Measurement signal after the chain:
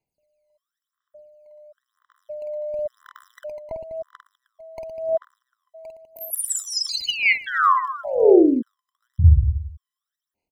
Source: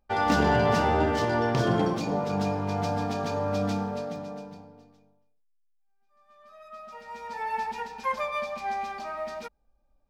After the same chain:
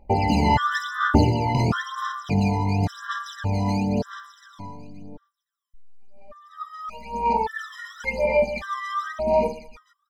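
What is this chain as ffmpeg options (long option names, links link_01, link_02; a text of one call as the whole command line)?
ffmpeg -i in.wav -filter_complex "[0:a]highshelf=frequency=5900:gain=-6.5,asplit=2[link_01][link_02];[link_02]acompressor=threshold=-36dB:ratio=6,volume=2dB[link_03];[link_01][link_03]amix=inputs=2:normalize=0,aecho=1:1:50|115|199.5|309.4|452.2:0.631|0.398|0.251|0.158|0.1,aphaser=in_gain=1:out_gain=1:delay=1:decay=0.79:speed=0.96:type=sinusoidal,afftfilt=real='re*gt(sin(2*PI*0.87*pts/sr)*(1-2*mod(floor(b*sr/1024/1000),2)),0)':imag='im*gt(sin(2*PI*0.87*pts/sr)*(1-2*mod(floor(b*sr/1024/1000),2)),0)':win_size=1024:overlap=0.75" out.wav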